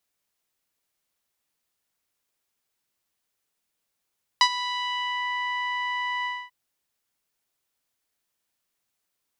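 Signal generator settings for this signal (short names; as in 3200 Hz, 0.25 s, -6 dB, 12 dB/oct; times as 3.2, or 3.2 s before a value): synth note saw B5 12 dB/oct, low-pass 2400 Hz, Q 2.5, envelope 1 oct, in 0.84 s, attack 1.7 ms, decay 0.07 s, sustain -15 dB, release 0.25 s, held 1.84 s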